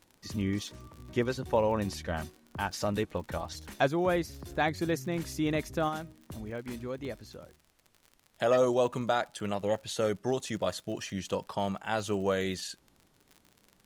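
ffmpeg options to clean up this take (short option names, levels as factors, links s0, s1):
-af "adeclick=t=4,agate=range=0.0891:threshold=0.00141"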